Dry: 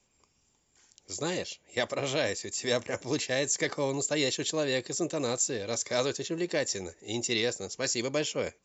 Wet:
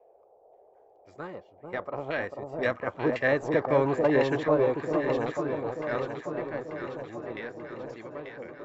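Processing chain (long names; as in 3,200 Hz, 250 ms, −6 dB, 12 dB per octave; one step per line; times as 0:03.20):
source passing by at 0:03.81, 8 m/s, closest 5.9 metres
in parallel at −7.5 dB: centre clipping without the shift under −34 dBFS
on the sum: auto-filter low-pass saw down 1.9 Hz 780–1,900 Hz
noise in a band 390–780 Hz −62 dBFS
delay that swaps between a low-pass and a high-pass 444 ms, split 970 Hz, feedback 74%, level −3.5 dB
level +2 dB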